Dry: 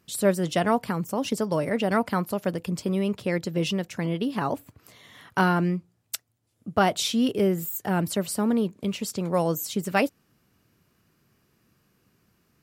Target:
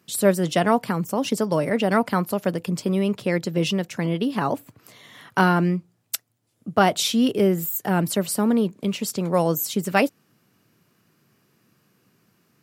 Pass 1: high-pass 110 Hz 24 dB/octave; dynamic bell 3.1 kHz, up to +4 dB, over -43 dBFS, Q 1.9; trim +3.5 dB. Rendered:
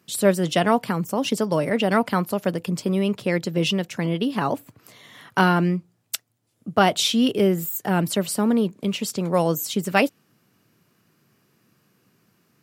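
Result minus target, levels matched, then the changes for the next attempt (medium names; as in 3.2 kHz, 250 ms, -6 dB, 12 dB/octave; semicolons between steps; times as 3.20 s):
4 kHz band +2.5 dB
change: dynamic bell 12 kHz, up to +4 dB, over -43 dBFS, Q 1.9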